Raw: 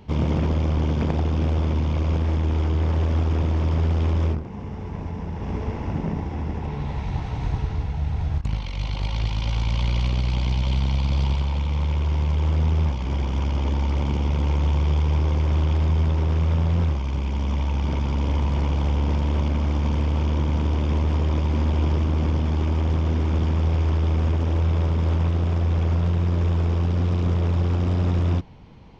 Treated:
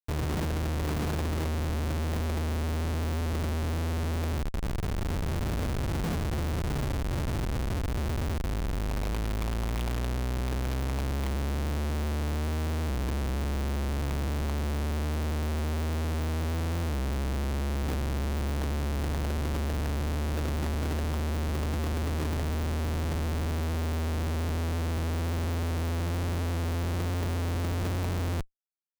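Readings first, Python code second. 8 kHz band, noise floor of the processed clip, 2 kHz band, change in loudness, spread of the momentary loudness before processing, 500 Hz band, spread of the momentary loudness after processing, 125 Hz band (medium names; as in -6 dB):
no reading, -30 dBFS, -0.5 dB, -7.5 dB, 6 LU, -4.0 dB, 1 LU, -8.5 dB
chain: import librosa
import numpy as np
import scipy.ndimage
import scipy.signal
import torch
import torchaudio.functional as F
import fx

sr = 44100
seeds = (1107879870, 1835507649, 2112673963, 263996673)

y = fx.schmitt(x, sr, flips_db=-28.5)
y = F.gain(torch.from_numpy(y), -7.5).numpy()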